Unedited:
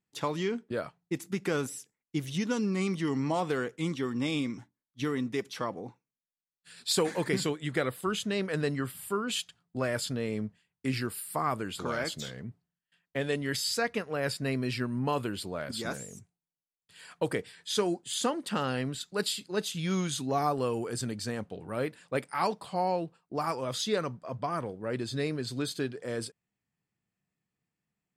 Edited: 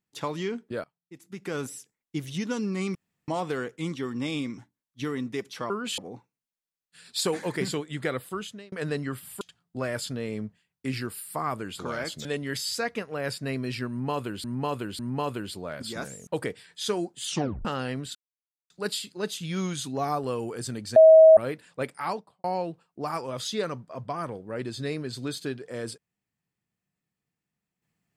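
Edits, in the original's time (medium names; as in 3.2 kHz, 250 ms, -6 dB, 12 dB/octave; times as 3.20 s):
0.84–1.65 s: fade in quadratic, from -23.5 dB
2.95–3.28 s: room tone
7.94–8.44 s: fade out
9.13–9.41 s: move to 5.70 s
12.25–13.24 s: delete
14.88–15.43 s: loop, 3 plays
16.16–17.16 s: delete
18.15 s: tape stop 0.39 s
19.04 s: insert silence 0.55 s
21.30–21.71 s: bleep 639 Hz -9 dBFS
22.33–22.78 s: studio fade out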